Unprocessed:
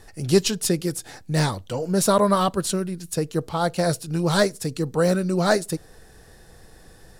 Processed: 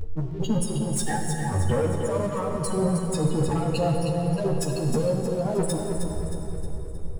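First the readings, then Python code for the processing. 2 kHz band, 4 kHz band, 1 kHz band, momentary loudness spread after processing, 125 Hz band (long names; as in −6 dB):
−8.5 dB, −9.5 dB, −5.5 dB, 8 LU, +1.0 dB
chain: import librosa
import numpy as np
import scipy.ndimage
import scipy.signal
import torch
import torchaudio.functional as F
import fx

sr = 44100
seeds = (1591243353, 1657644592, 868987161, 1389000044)

p1 = fx.over_compress(x, sr, threshold_db=-31.0, ratio=-1.0)
p2 = fx.high_shelf(p1, sr, hz=2100.0, db=-8.5)
p3 = fx.spec_gate(p2, sr, threshold_db=-10, keep='strong')
p4 = fx.leveller(p3, sr, passes=3)
p5 = p4 * (1.0 - 0.66 / 2.0 + 0.66 / 2.0 * np.cos(2.0 * np.pi * 1.8 * (np.arange(len(p4)) / sr)))
p6 = fx.doubler(p5, sr, ms=13.0, db=-3.5)
p7 = p6 + fx.echo_feedback(p6, sr, ms=313, feedback_pct=49, wet_db=-7, dry=0)
y = fx.rev_plate(p7, sr, seeds[0], rt60_s=3.1, hf_ratio=0.8, predelay_ms=0, drr_db=2.5)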